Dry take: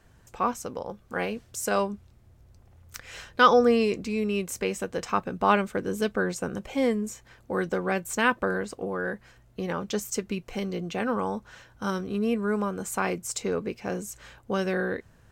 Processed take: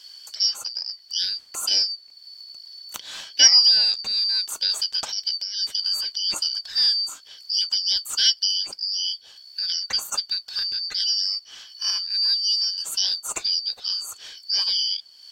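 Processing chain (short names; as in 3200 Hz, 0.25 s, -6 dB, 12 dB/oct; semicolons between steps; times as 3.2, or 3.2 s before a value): four-band scrambler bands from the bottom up 4321; 4.69–6.54 negative-ratio compressor -29 dBFS, ratio -1; mismatched tape noise reduction encoder only; gain +4 dB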